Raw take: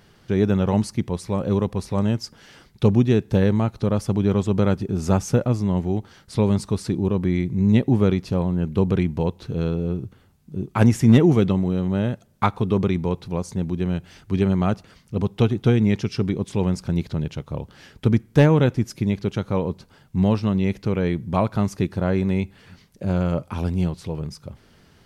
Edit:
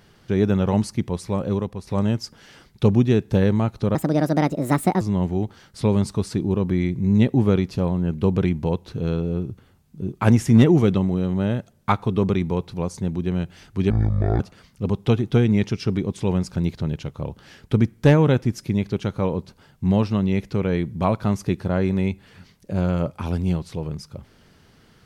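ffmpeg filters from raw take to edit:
-filter_complex "[0:a]asplit=6[s0][s1][s2][s3][s4][s5];[s0]atrim=end=1.87,asetpts=PTS-STARTPTS,afade=t=out:st=1.36:d=0.51:silence=0.334965[s6];[s1]atrim=start=1.87:end=3.954,asetpts=PTS-STARTPTS,afade=t=in:d=0.004:c=hsin:silence=0.334965[s7];[s2]atrim=start=3.95:end=5.55,asetpts=PTS-STARTPTS,asetrate=66591,aresample=44100,atrim=end_sample=46728,asetpts=PTS-STARTPTS[s8];[s3]atrim=start=5.546:end=14.444[s9];[s4]atrim=start=14.44:end=14.72,asetpts=PTS-STARTPTS,asetrate=24696,aresample=44100[s10];[s5]atrim=start=14.716[s11];[s6][s7]concat=n=2:v=0:a=1[s12];[s12][s8]acrossfade=d=0.004:c1=hsin:c2=hsin[s13];[s13][s9]acrossfade=d=0.004:c1=hsin:c2=hsin[s14];[s14][s10]acrossfade=d=0.004:c1=hsin:c2=hsin[s15];[s15][s11]acrossfade=d=0.004:c1=hsin:c2=hsin"

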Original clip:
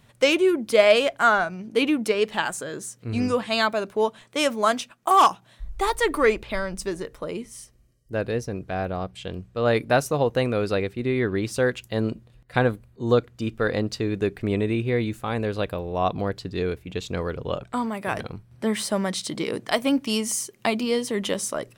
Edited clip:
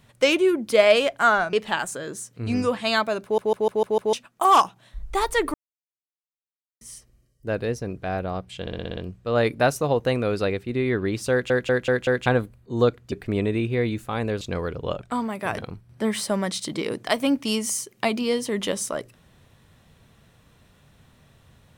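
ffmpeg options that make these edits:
-filter_complex "[0:a]asplit=23[s0][s1][s2][s3][s4][s5][s6][s7][s8][s9][s10][s11][s12][s13][s14][s15][s16][s17][s18][s19][s20][s21][s22];[s0]atrim=end=1.532[s23];[s1]atrim=start=2.188:end=4.042[s24];[s2]atrim=start=3.888:end=4.042[s25];[s3]atrim=start=3.888:end=4.042[s26];[s4]atrim=start=3.888:end=4.042[s27];[s5]atrim=start=3.888:end=4.042[s28];[s6]atrim=start=3.888:end=4.042[s29];[s7]atrim=start=4.788:end=6.2,asetpts=PTS-STARTPTS,afade=t=out:st=1.408:d=0.004:c=hsin[s30];[s8]atrim=start=6.2:end=7.47,asetpts=PTS-STARTPTS,volume=0[s31];[s9]atrim=start=7.47:end=9.332,asetpts=PTS-STARTPTS,afade=t=in:d=0.004:c=hsin[s32];[s10]atrim=start=9.268:end=9.332[s33];[s11]atrim=start=9.268:end=9.332[s34];[s12]atrim=start=9.268:end=9.332[s35];[s13]atrim=start=9.268:end=9.332[s36];[s14]atrim=start=9.268:end=9.332[s37];[s15]atrim=start=9.268:end=11.802[s38];[s16]atrim=start=11.608:end=11.802[s39];[s17]atrim=start=11.608:end=11.802[s40];[s18]atrim=start=11.608:end=11.802[s41];[s19]atrim=start=11.608:end=11.802[s42];[s20]atrim=start=12.558:end=13.422[s43];[s21]atrim=start=14.268:end=15.562[s44];[s22]atrim=start=17.028[s45];[s23][s24]acrossfade=d=0.004:c1=hsin:c2=hsin[s46];[s46][s25]acrossfade=d=0.004:c1=hsin:c2=hsin[s47];[s47][s26]acrossfade=d=0.004:c1=hsin:c2=hsin[s48];[s48][s27]acrossfade=d=0.004:c1=hsin:c2=hsin[s49];[s49][s28]acrossfade=d=0.004:c1=hsin:c2=hsin[s50];[s50][s29]acrossfade=d=0.004:c1=hsin:c2=hsin[s51];[s30][s31][s32]concat=n=3:v=0:a=1[s52];[s51][s52]acrossfade=d=0.004:c1=hsin:c2=hsin[s53];[s53][s33]acrossfade=d=0.004:c1=hsin:c2=hsin[s54];[s54][s34]acrossfade=d=0.004:c1=hsin:c2=hsin[s55];[s55][s35]acrossfade=d=0.004:c1=hsin:c2=hsin[s56];[s56][s36]acrossfade=d=0.004:c1=hsin:c2=hsin[s57];[s57][s37]acrossfade=d=0.004:c1=hsin:c2=hsin[s58];[s58][s38]acrossfade=d=0.004:c1=hsin:c2=hsin[s59];[s59][s39]acrossfade=d=0.004:c1=hsin:c2=hsin[s60];[s60][s40]acrossfade=d=0.004:c1=hsin:c2=hsin[s61];[s61][s41]acrossfade=d=0.004:c1=hsin:c2=hsin[s62];[s62][s42]acrossfade=d=0.004:c1=hsin:c2=hsin[s63];[s63][s43]acrossfade=d=0.004:c1=hsin:c2=hsin[s64];[s64][s44]acrossfade=d=0.004:c1=hsin:c2=hsin[s65];[s65][s45]acrossfade=d=0.004:c1=hsin:c2=hsin"

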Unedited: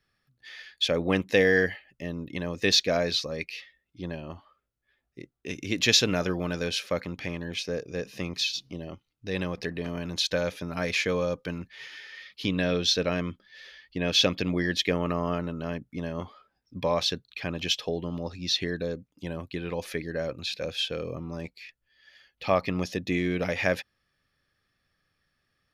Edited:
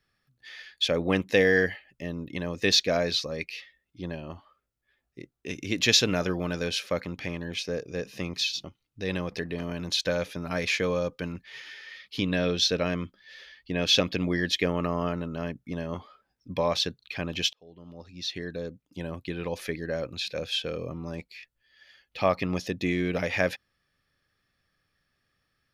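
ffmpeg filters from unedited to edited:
-filter_complex "[0:a]asplit=3[s0][s1][s2];[s0]atrim=end=8.642[s3];[s1]atrim=start=8.898:end=17.79,asetpts=PTS-STARTPTS,afade=t=out:st=8.888:d=0.004:c=hsin[s4];[s2]atrim=start=17.79,asetpts=PTS-STARTPTS,afade=t=in:d=1.61[s5];[s4][s5]concat=n=2:v=0:a=1[s6];[s3][s6]acrossfade=d=0.004:c1=hsin:c2=hsin"

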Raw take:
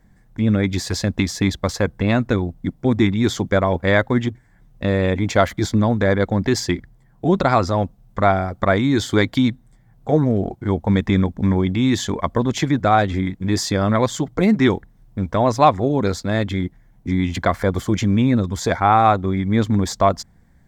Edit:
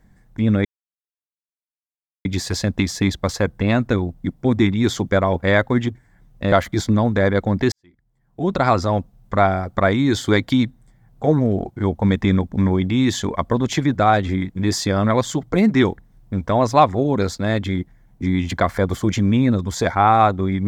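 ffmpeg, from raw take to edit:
-filter_complex "[0:a]asplit=4[s0][s1][s2][s3];[s0]atrim=end=0.65,asetpts=PTS-STARTPTS,afade=t=out:st=0.646:d=0.004:c=hsin,apad=pad_dur=1.6[s4];[s1]atrim=start=0.65:end=4.922,asetpts=PTS-STARTPTS,afade=t=in:d=0.004:c=hsin[s5];[s2]atrim=start=5.368:end=6.57,asetpts=PTS-STARTPTS,afade=t=out:st=1.198:d=0.004:c=hsin[s6];[s3]atrim=start=6.57,asetpts=PTS-STARTPTS,afade=t=in:d=0.95:c=qua[s7];[s4][s5]concat=n=2:v=0:a=1[s8];[s6][s7]concat=n=2:v=0:a=1[s9];[s8][s9]acrossfade=d=0.004:c1=hsin:c2=hsin"

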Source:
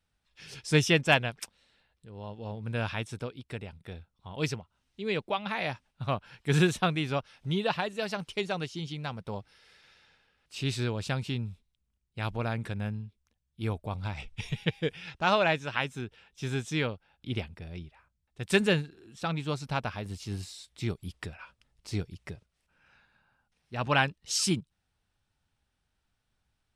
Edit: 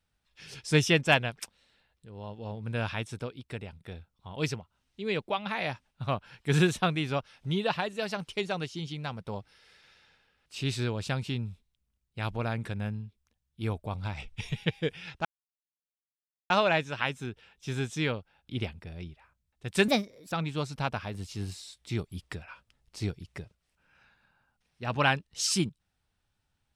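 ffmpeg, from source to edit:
-filter_complex "[0:a]asplit=4[s0][s1][s2][s3];[s0]atrim=end=15.25,asetpts=PTS-STARTPTS,afade=t=out:st=15.246:d=0.004:c=hsin,apad=pad_dur=1.25[s4];[s1]atrim=start=15.25:end=18.634,asetpts=PTS-STARTPTS,afade=t=in:d=0.004:c=hsin[s5];[s2]atrim=start=18.63:end=19.23,asetpts=PTS-STARTPTS,asetrate=60417,aresample=44100[s6];[s3]atrim=start=19.226[s7];[s4][s5]concat=n=2:v=0:a=1[s8];[s8][s6]acrossfade=d=0.004:c1=hsin:c2=hsin[s9];[s9][s7]acrossfade=d=0.004:c1=hsin:c2=hsin"

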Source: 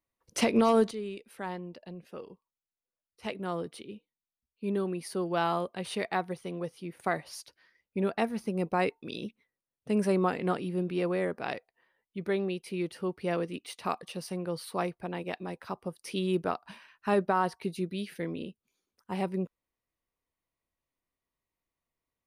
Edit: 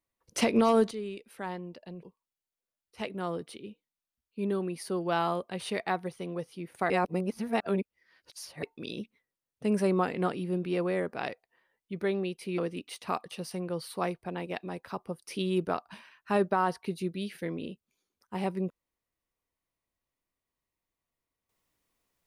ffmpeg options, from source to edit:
-filter_complex "[0:a]asplit=5[s0][s1][s2][s3][s4];[s0]atrim=end=2.032[s5];[s1]atrim=start=2.278:end=7.152[s6];[s2]atrim=start=7.148:end=8.882,asetpts=PTS-STARTPTS,areverse[s7];[s3]atrim=start=8.878:end=12.832[s8];[s4]atrim=start=13.348[s9];[s5][s6]acrossfade=d=0.004:c1=hsin:c2=hsin[s10];[s10][s7]acrossfade=d=0.004:c1=hsin:c2=hsin[s11];[s11][s8]acrossfade=d=0.004:c1=hsin:c2=hsin[s12];[s12][s9]acrossfade=d=0.004:c1=hsin:c2=hsin"

